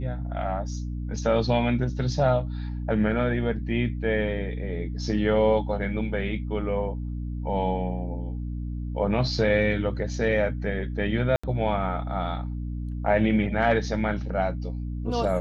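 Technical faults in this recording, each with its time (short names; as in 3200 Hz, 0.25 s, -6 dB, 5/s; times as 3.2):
hum 60 Hz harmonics 5 -31 dBFS
11.36–11.44 gap 75 ms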